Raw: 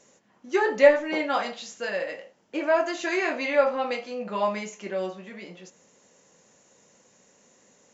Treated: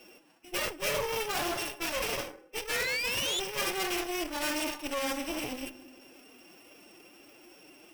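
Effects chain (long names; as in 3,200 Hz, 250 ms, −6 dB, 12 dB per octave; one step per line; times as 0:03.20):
samples sorted by size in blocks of 16 samples
on a send at −12 dB: convolution reverb RT60 1.5 s, pre-delay 4 ms
on the sum: phase-vocoder pitch shift with formants kept +6.5 semitones
sound drawn into the spectrogram rise, 0:02.69–0:03.40, 1,700–3,600 Hz −25 dBFS
reversed playback
downward compressor 6 to 1, threshold −38 dBFS, peak gain reduction 25 dB
reversed playback
harmonic generator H 8 −13 dB, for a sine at −24.5 dBFS
level +5.5 dB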